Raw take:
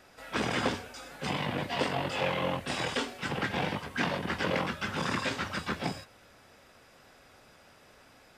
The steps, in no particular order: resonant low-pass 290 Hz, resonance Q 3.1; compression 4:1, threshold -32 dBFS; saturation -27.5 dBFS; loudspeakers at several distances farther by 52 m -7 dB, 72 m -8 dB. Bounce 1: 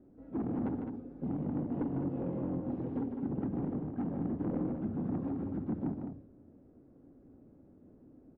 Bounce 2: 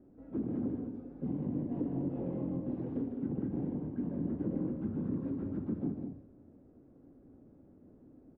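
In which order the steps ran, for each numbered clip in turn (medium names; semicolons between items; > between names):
resonant low-pass > saturation > compression > loudspeakers at several distances; saturation > resonant low-pass > compression > loudspeakers at several distances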